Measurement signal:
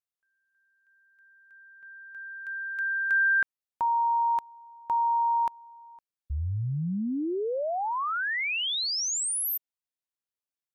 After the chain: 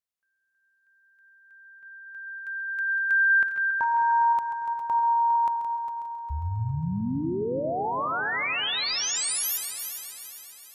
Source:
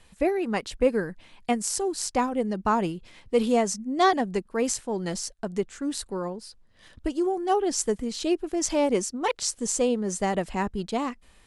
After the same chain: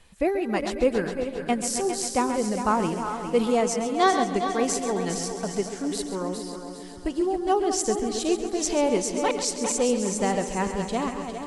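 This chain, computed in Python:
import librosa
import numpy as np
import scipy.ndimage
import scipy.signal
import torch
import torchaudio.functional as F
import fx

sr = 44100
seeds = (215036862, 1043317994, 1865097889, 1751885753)

y = fx.reverse_delay_fb(x, sr, ms=206, feedback_pct=48, wet_db=-9)
y = fx.echo_heads(y, sr, ms=135, heads='first and third', feedback_pct=61, wet_db=-11.5)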